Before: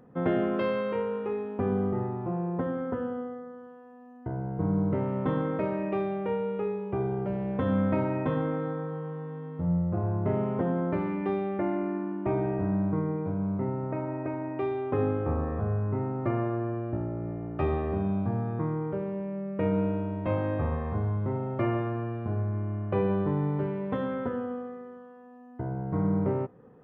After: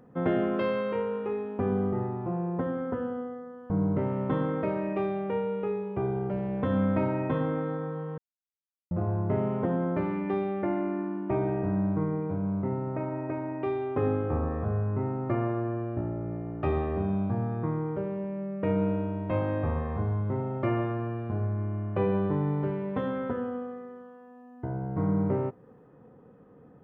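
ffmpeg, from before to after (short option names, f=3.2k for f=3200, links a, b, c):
-filter_complex "[0:a]asplit=4[a][b][c][d];[a]atrim=end=3.702[e];[b]atrim=start=4.658:end=9.14,asetpts=PTS-STARTPTS,afade=t=out:st=4.478:d=0.004:c=hsin[f];[c]atrim=start=9.14:end=9.87,asetpts=PTS-STARTPTS,volume=0[g];[d]atrim=start=9.87,asetpts=PTS-STARTPTS,afade=t=in:d=0.004:c=hsin[h];[f][g][h]concat=n=3:v=0:a=1[i];[e][i]acrossfade=d=0.004:c1=hsin:c2=hsin"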